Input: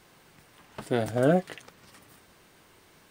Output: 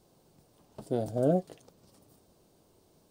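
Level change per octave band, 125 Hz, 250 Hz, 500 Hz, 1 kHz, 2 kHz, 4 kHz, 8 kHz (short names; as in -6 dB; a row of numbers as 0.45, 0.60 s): -3.5 dB, -3.5 dB, -3.5 dB, -6.0 dB, under -15 dB, under -10 dB, n/a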